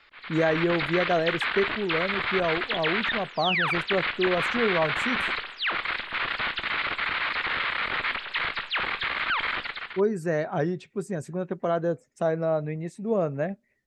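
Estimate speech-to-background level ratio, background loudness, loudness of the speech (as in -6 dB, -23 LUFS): -1.5 dB, -27.0 LUFS, -28.5 LUFS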